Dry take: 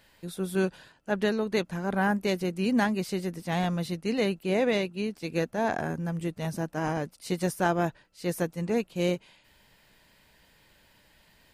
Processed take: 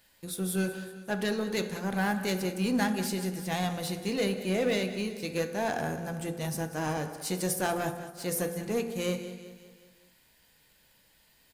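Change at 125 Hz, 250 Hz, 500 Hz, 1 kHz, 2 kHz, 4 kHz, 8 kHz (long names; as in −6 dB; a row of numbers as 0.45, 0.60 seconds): −2.5, −2.5, −3.0, −3.0, −1.5, +1.0, +6.5 decibels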